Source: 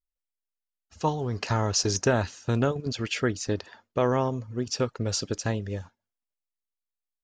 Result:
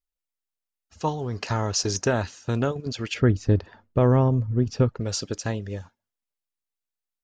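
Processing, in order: 3.14–5.00 s: RIAA curve playback

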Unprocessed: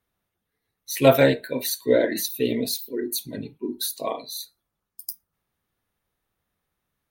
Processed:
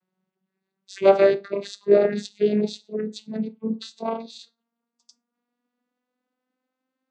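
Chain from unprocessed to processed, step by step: vocoder on a note that slides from F#3, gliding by +6 st; trim +2 dB

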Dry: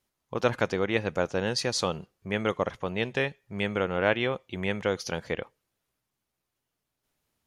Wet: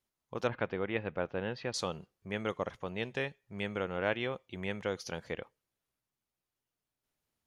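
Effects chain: 0.47–1.74 s: low-pass 3.2 kHz 24 dB/octave; trim -7.5 dB

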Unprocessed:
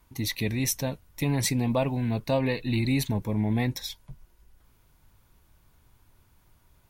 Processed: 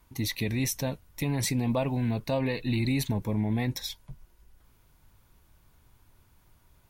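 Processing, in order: peak limiter -19 dBFS, peak gain reduction 5 dB

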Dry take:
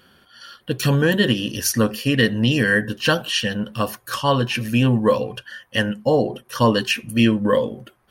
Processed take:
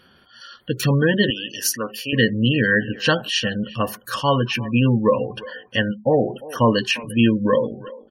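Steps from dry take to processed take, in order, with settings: 5.91–6.70 s: peaking EQ 4.4 kHz -14.5 dB -> -8 dB 0.61 oct; speakerphone echo 350 ms, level -17 dB; spectral gate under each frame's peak -25 dB strong; 1.30–2.13 s: high-pass 940 Hz 6 dB/octave

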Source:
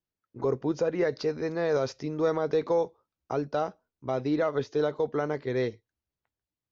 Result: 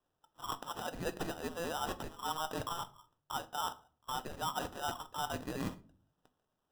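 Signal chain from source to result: steep high-pass 1.2 kHz 48 dB/octave; treble shelf 3.6 kHz -9 dB; reverse; compression 6:1, threshold -52 dBFS, peak gain reduction 16.5 dB; reverse; sample-and-hold 20×; simulated room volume 350 m³, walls furnished, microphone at 0.47 m; trim +16.5 dB

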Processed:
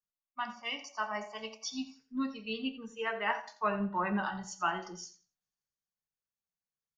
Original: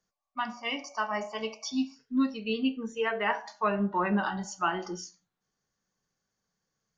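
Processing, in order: peaking EQ 320 Hz -5.5 dB 1.3 oct; feedback delay 86 ms, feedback 23%, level -13.5 dB; three bands expanded up and down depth 40%; trim -3.5 dB

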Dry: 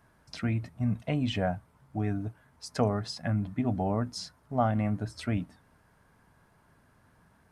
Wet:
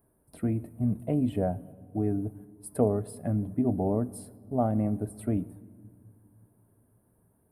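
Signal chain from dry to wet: gate -52 dBFS, range -6 dB; FFT filter 170 Hz 0 dB, 400 Hz +7 dB, 1.5 kHz -13 dB, 3.9 kHz -18 dB, 6.2 kHz -27 dB, 9.4 kHz +11 dB; on a send: reverberation RT60 1.9 s, pre-delay 3 ms, DRR 19 dB

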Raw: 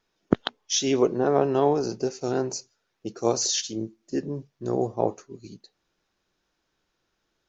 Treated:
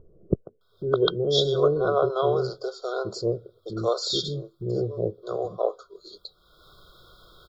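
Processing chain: peaking EQ 700 Hz -3 dB 0.52 oct; static phaser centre 1.3 kHz, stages 8; bands offset in time lows, highs 610 ms, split 460 Hz; in parallel at +1.5 dB: upward compressor, threshold -32 dBFS; on the sum: FFT band-reject 1.5–3.2 kHz

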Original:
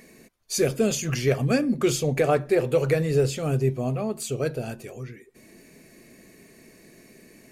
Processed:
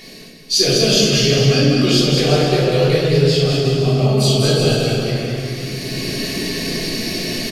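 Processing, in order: high-order bell 4 kHz +14.5 dB 1.2 oct; in parallel at -0.5 dB: peak limiter -15.5 dBFS, peak gain reduction 9 dB; on the sum: bouncing-ball echo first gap 200 ms, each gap 0.8×, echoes 5; simulated room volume 400 m³, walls mixed, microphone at 3.3 m; level rider gain up to 10 dB; trim -1 dB

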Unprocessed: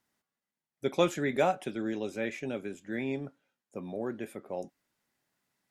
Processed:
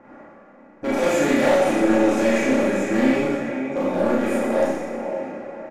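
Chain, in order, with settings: spectral levelling over time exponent 0.6; peaking EQ 3.5 kHz -14.5 dB 0.28 oct; echo that smears into a reverb 475 ms, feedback 42%, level -13 dB; in parallel at +2 dB: compression, threshold -39 dBFS, peak gain reduction 19 dB; on the sum: level-controlled noise filter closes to 1.2 kHz, open at -25 dBFS; comb 3.6 ms, depth 46%; overload inside the chain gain 22.5 dB; Schroeder reverb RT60 1.2 s, combs from 27 ms, DRR -8 dB

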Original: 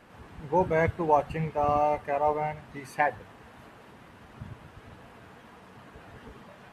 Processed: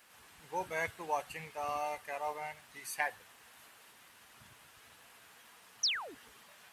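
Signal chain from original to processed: painted sound fall, 5.83–6.15 s, 240–6400 Hz -32 dBFS; pre-emphasis filter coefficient 0.97; trim +7 dB

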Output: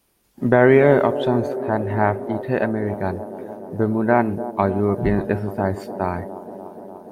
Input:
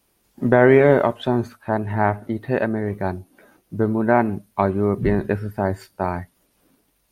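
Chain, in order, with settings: on a send: feedback echo behind a band-pass 295 ms, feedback 78%, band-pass 430 Hz, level -11.5 dB

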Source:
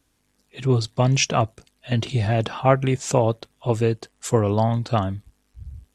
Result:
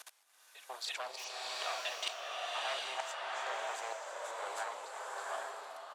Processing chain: doubling 35 ms -10.5 dB; delay 320 ms -5.5 dB; in parallel at -1 dB: peak limiter -9.5 dBFS, peak gain reduction 8 dB; on the sum: sine folder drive 12 dB, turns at 1.5 dBFS; level held to a coarse grid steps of 23 dB; trance gate "x..xx..x" 65 bpm -24 dB; reverse; compression 12:1, threshold -34 dBFS, peak gain reduction 16 dB; reverse; inverse Chebyshev high-pass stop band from 150 Hz, stop band 70 dB; saturation -23 dBFS, distortion -27 dB; swelling reverb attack 780 ms, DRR -2 dB; trim +1 dB

